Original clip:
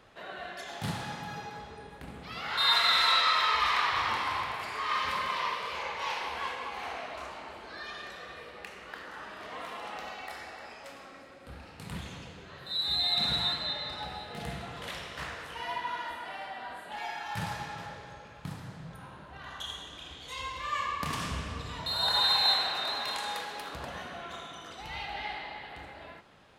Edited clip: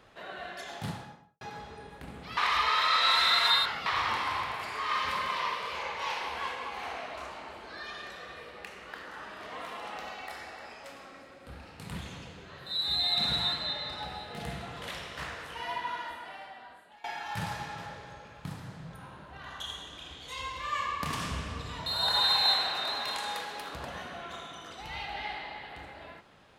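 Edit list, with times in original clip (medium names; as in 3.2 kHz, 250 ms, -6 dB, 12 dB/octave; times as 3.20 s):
0.66–1.41 s: studio fade out
2.37–3.86 s: reverse
15.87–17.04 s: fade out, to -21 dB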